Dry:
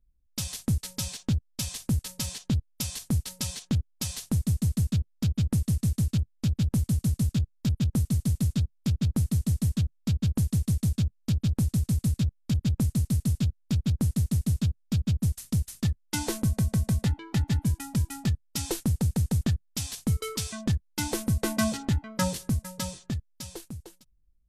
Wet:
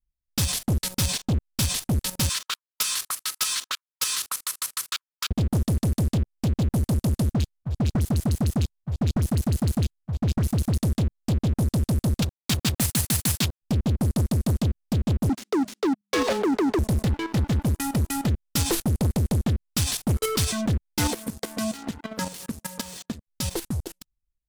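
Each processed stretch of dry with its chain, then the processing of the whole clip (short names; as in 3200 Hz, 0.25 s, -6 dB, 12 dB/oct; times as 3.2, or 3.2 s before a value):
2.29–5.31 brick-wall FIR high-pass 940 Hz + bell 1300 Hz +7.5 dB 0.55 oct
7.34–10.78 compressor 3:1, threshold -30 dBFS + auto swell 0.12 s + dispersion highs, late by 61 ms, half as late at 1200 Hz
12.22–13.62 HPF 1200 Hz 6 dB/oct + sample leveller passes 3
15.29–16.79 LPF 3900 Hz + frequency shift +200 Hz
21.1–23.27 HPF 210 Hz 6 dB/oct + comb 4.3 ms, depth 41% + compressor 16:1, threshold -40 dBFS
whole clip: dynamic EQ 6800 Hz, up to -4 dB, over -48 dBFS, Q 1.5; level quantiser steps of 11 dB; sample leveller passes 5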